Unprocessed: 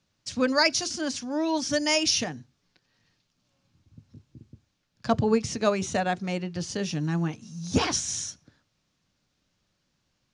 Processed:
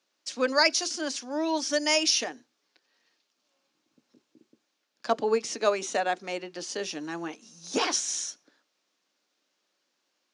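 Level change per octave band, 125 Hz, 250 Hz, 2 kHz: -21.0, -6.5, 0.0 dB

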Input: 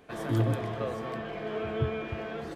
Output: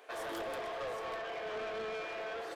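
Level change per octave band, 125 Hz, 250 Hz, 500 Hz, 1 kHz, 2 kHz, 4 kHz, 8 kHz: -30.5 dB, -16.0 dB, -5.0 dB, -2.0 dB, -1.0 dB, -0.5 dB, n/a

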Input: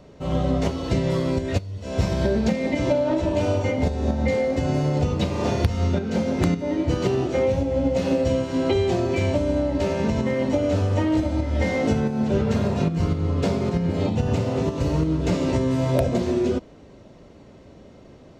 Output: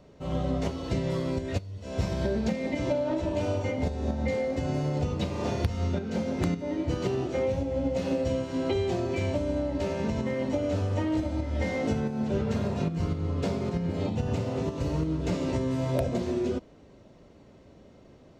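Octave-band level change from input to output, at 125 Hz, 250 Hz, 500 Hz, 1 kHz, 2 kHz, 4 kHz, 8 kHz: -6.5, -6.5, -6.5, -6.5, -6.5, -6.5, -6.5 dB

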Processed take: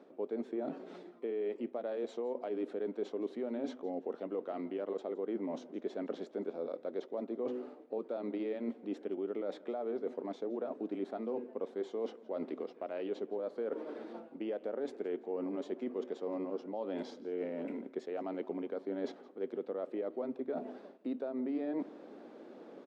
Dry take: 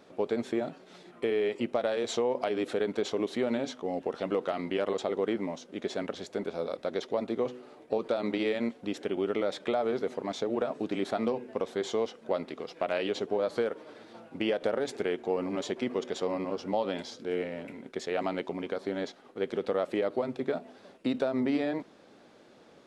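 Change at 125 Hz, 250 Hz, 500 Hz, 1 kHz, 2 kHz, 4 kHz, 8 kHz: -12.5 dB, -5.5 dB, -7.0 dB, -10.5 dB, -15.5 dB, -17.5 dB, under -20 dB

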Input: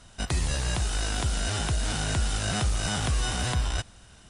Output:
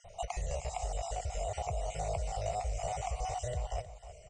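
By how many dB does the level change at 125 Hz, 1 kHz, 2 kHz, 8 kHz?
-11.0, -1.5, -17.0, -12.0 dB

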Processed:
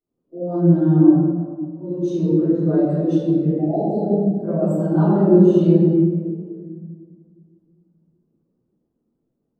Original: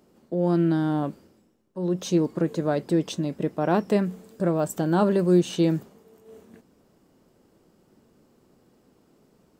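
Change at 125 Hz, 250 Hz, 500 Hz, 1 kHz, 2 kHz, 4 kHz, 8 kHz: +9.0 dB, +8.5 dB, +6.0 dB, 0.0 dB, n/a, under -10 dB, under -10 dB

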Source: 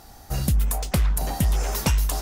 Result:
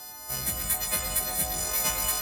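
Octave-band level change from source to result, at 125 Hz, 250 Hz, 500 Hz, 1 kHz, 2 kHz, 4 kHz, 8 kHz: -17.0, -13.0, -4.5, -2.5, +0.5, +2.0, +5.5 dB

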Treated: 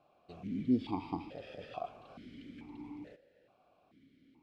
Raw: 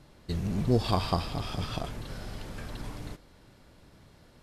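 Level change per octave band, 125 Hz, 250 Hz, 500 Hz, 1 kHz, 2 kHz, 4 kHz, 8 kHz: -16.5 dB, -2.5 dB, -11.0 dB, -9.5 dB, -12.0 dB, -18.0 dB, under -25 dB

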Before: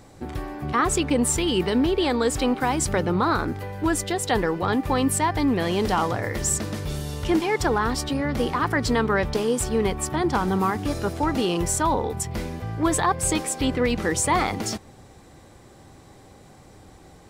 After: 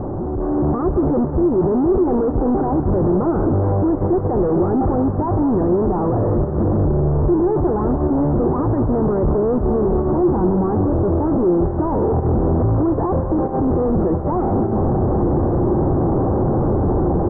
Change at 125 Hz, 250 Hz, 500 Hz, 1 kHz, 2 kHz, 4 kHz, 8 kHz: +11.0 dB, +8.0 dB, +8.0 dB, +1.0 dB, under -15 dB, under -40 dB, under -40 dB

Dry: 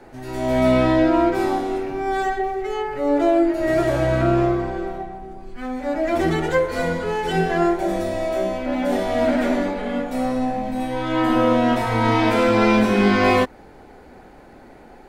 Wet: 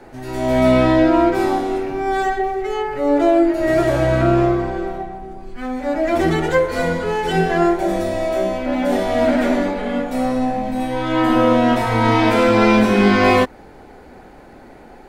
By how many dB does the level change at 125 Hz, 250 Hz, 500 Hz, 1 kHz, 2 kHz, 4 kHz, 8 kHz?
+3.0, +3.0, +3.0, +3.0, +3.0, +3.0, +3.0 dB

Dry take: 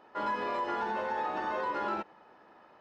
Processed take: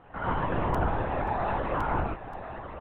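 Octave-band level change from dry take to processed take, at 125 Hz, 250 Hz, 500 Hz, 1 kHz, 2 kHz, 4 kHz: +23.5, +7.5, +4.5, +2.5, +1.5, -1.0 dB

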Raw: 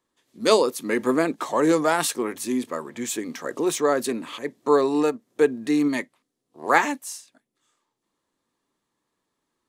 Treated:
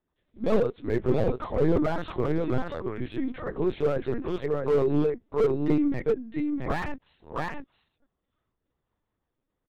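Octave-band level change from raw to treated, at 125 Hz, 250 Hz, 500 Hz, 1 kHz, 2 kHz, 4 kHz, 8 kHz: +9.5 dB, -3.0 dB, -3.0 dB, -9.5 dB, -10.5 dB, -14.5 dB, under -25 dB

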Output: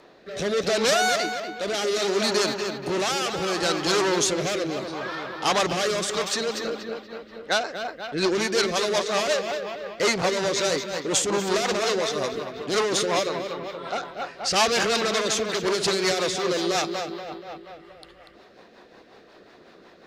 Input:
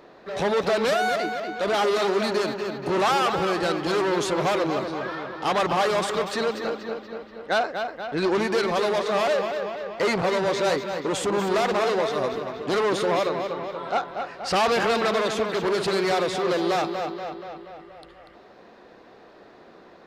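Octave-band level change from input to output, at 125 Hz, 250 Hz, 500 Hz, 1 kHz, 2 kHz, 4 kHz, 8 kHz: -1.5, -1.0, -1.5, -3.0, +1.0, +5.0, +10.5 dB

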